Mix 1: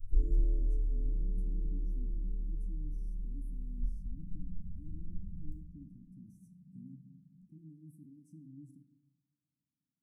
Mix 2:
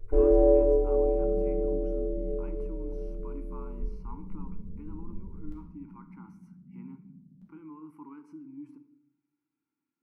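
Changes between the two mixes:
speech -7.0 dB; second sound: send +6.5 dB; master: remove elliptic band-stop 180–7600 Hz, stop band 80 dB

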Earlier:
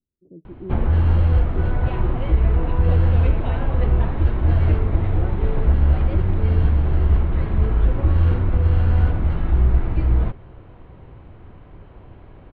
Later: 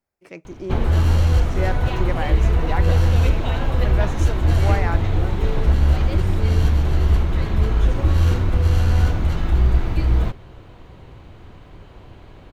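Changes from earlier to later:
speech: remove inverse Chebyshev low-pass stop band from 2.1 kHz, stop band 80 dB; background: remove distance through air 490 m

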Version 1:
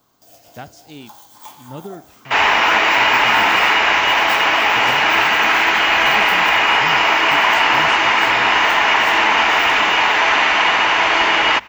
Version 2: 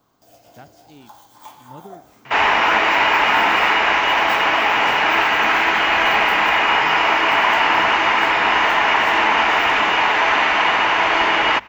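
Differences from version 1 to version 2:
speech -8.0 dB; master: add treble shelf 3 kHz -8 dB

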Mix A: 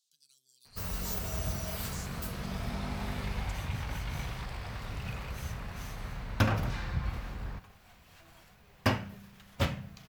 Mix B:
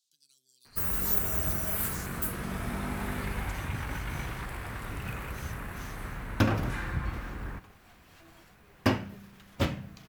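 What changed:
first sound: add FFT filter 690 Hz 0 dB, 1.6 kHz +7 dB, 4.9 kHz -6 dB, 9.7 kHz +11 dB; master: add peaking EQ 320 Hz +8.5 dB 0.81 oct

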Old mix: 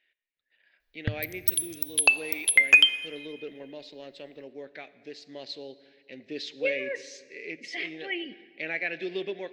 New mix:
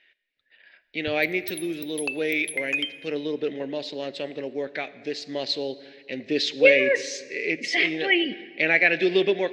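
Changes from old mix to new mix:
speech +12.0 dB; background -10.5 dB

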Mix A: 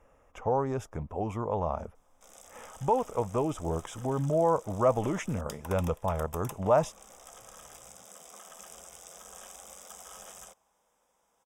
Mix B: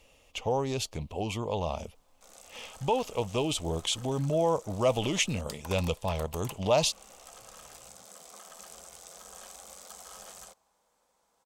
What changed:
speech: add resonant high shelf 2.1 kHz +12 dB, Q 3; master: remove Butterworth band-stop 4.3 kHz, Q 3.4

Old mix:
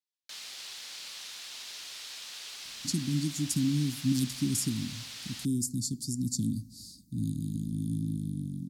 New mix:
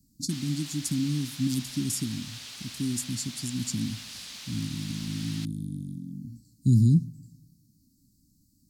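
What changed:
speech: entry -2.65 s; background: send on

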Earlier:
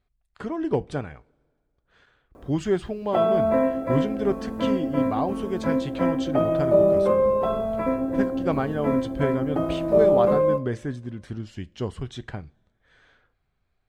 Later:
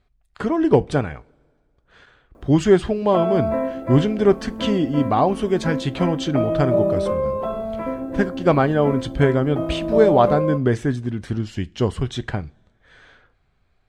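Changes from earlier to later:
speech +9.0 dB; background: send -10.0 dB

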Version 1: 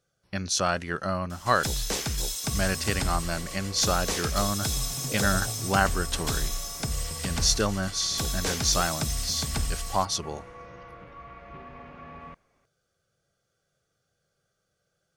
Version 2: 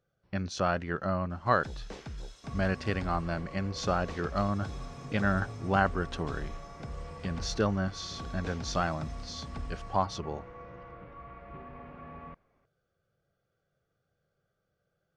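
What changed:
first sound -9.5 dB; master: add tape spacing loss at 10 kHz 27 dB

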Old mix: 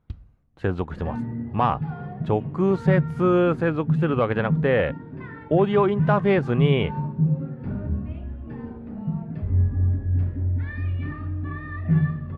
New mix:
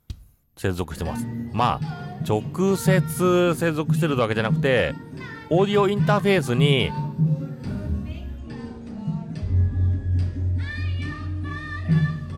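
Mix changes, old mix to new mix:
second sound: remove distance through air 230 m; master: remove low-pass 1.9 kHz 12 dB/octave

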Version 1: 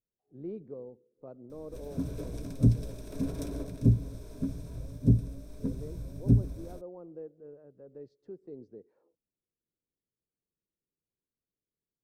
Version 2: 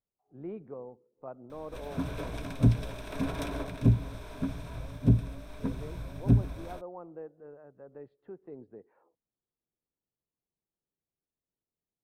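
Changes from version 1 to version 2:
speech: add distance through air 460 m; master: add high-order bell 1.6 kHz +14 dB 2.7 oct

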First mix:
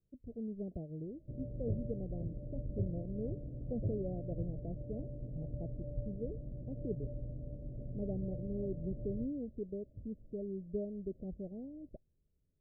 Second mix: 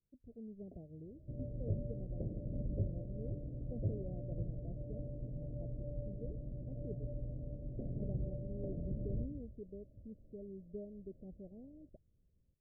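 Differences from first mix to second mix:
speech -8.0 dB; first sound +11.0 dB

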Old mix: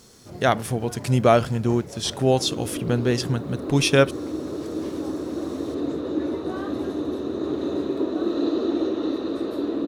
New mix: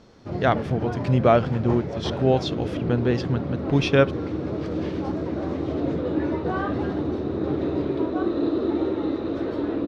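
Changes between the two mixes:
first sound +10.0 dB; master: add distance through air 230 m

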